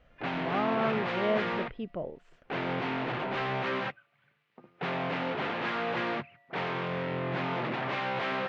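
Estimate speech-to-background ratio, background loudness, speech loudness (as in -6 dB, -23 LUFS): -1.0 dB, -32.5 LUFS, -33.5 LUFS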